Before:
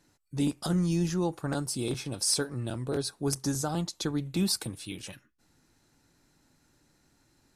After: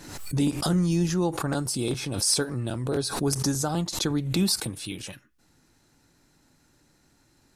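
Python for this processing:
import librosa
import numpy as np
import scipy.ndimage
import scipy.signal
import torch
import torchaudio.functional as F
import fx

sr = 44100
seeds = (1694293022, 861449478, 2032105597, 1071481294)

y = fx.pre_swell(x, sr, db_per_s=64.0)
y = y * librosa.db_to_amplitude(3.5)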